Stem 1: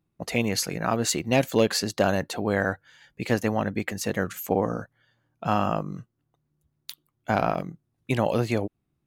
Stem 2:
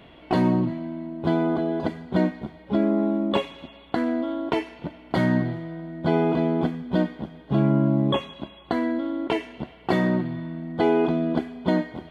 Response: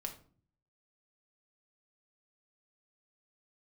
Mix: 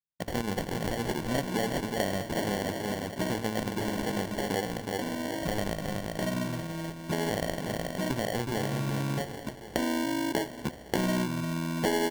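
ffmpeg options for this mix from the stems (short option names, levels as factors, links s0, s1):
-filter_complex "[0:a]agate=range=0.0224:threshold=0.00282:ratio=3:detection=peak,bandreject=f=113.8:t=h:w=4,bandreject=f=227.6:t=h:w=4,bandreject=f=341.4:t=h:w=4,bandreject=f=455.2:t=h:w=4,bandreject=f=569:t=h:w=4,bandreject=f=682.8:t=h:w=4,bandreject=f=796.6:t=h:w=4,bandreject=f=910.4:t=h:w=4,bandreject=f=1024.2:t=h:w=4,bandreject=f=1138:t=h:w=4,bandreject=f=1251.8:t=h:w=4,bandreject=f=1365.6:t=h:w=4,bandreject=f=1479.4:t=h:w=4,bandreject=f=1593.2:t=h:w=4,bandreject=f=1707:t=h:w=4,bandreject=f=1820.8:t=h:w=4,bandreject=f=1934.6:t=h:w=4,bandreject=f=2048.4:t=h:w=4,bandreject=f=2162.2:t=h:w=4,bandreject=f=2276:t=h:w=4,bandreject=f=2389.8:t=h:w=4,bandreject=f=2503.6:t=h:w=4,bandreject=f=2617.4:t=h:w=4,bandreject=f=2731.2:t=h:w=4,bandreject=f=2845:t=h:w=4,bandreject=f=2958.8:t=h:w=4,bandreject=f=3072.6:t=h:w=4,bandreject=f=3186.4:t=h:w=4,bandreject=f=3300.2:t=h:w=4,bandreject=f=3414:t=h:w=4,bandreject=f=3527.8:t=h:w=4,bandreject=f=3641.6:t=h:w=4,bandreject=f=3755.4:t=h:w=4,volume=0.794,asplit=4[s0][s1][s2][s3];[s1]volume=0.2[s4];[s2]volume=0.501[s5];[1:a]adelay=1050,volume=1.33,asplit=2[s6][s7];[s7]volume=0.188[s8];[s3]apad=whole_len=580066[s9];[s6][s9]sidechaincompress=threshold=0.00562:ratio=5:attack=5.8:release=786[s10];[2:a]atrim=start_sample=2205[s11];[s4][s8]amix=inputs=2:normalize=0[s12];[s12][s11]afir=irnorm=-1:irlink=0[s13];[s5]aecho=0:1:369|738|1107|1476|1845|2214:1|0.41|0.168|0.0689|0.0283|0.0116[s14];[s0][s10][s13][s14]amix=inputs=4:normalize=0,acrusher=samples=35:mix=1:aa=0.000001,acompressor=threshold=0.0398:ratio=3"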